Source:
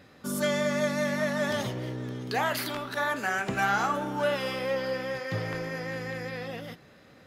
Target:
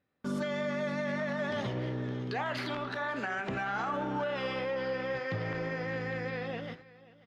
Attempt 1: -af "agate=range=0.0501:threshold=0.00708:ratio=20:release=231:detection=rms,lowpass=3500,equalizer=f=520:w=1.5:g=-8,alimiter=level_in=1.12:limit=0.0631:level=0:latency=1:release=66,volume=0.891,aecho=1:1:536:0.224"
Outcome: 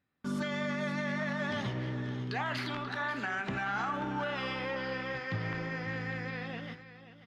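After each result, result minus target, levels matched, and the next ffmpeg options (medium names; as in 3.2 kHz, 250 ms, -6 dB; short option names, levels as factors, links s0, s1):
500 Hz band -4.5 dB; echo-to-direct +6.5 dB
-af "agate=range=0.0501:threshold=0.00708:ratio=20:release=231:detection=rms,lowpass=3500,alimiter=level_in=1.12:limit=0.0631:level=0:latency=1:release=66,volume=0.891,aecho=1:1:536:0.224"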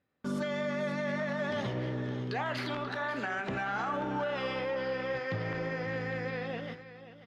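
echo-to-direct +6.5 dB
-af "agate=range=0.0501:threshold=0.00708:ratio=20:release=231:detection=rms,lowpass=3500,alimiter=level_in=1.12:limit=0.0631:level=0:latency=1:release=66,volume=0.891,aecho=1:1:536:0.106"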